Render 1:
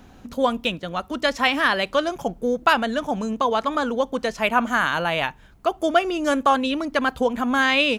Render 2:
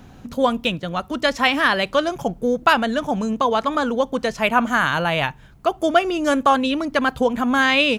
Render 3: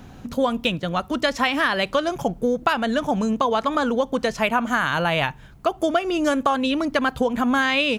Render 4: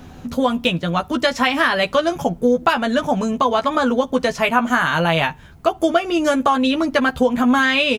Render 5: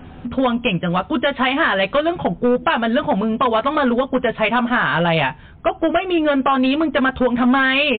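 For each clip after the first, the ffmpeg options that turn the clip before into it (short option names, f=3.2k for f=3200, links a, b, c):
-af "equalizer=f=130:w=1.9:g=8,volume=2dB"
-af "acompressor=threshold=-18dB:ratio=6,volume=1.5dB"
-filter_complex "[0:a]asplit=2[a][b];[b]adelay=12,volume=-5dB[c];[a][c]amix=inputs=2:normalize=0,volume=2.5dB"
-af "aresample=16000,asoftclip=type=hard:threshold=-12.5dB,aresample=44100,volume=2dB" -ar 8000 -c:a libmp3lame -b:a 48k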